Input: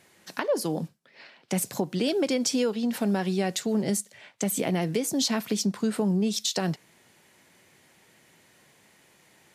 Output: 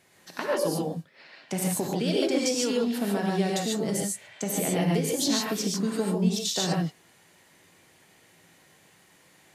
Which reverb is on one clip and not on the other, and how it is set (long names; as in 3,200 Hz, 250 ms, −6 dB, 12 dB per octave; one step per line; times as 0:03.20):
reverb whose tail is shaped and stops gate 170 ms rising, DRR −2.5 dB
level −3.5 dB